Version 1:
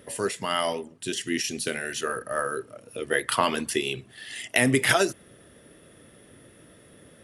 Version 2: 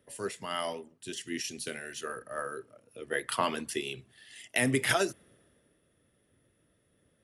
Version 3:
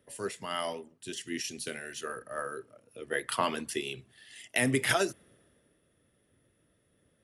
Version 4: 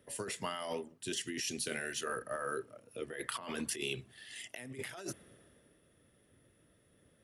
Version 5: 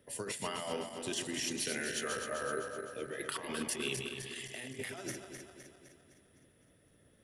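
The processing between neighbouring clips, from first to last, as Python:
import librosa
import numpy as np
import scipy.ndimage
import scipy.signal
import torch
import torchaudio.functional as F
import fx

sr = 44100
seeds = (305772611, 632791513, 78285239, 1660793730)

y1 = fx.band_widen(x, sr, depth_pct=40)
y1 = y1 * librosa.db_to_amplitude(-8.0)
y2 = y1
y3 = fx.over_compress(y2, sr, threshold_db=-38.0, ratio=-1.0)
y3 = y3 * librosa.db_to_amplitude(-2.0)
y4 = fx.reverse_delay_fb(y3, sr, ms=128, feedback_pct=72, wet_db=-5.5)
y4 = fx.peak_eq(y4, sr, hz=1200.0, db=-2.5, octaves=0.38)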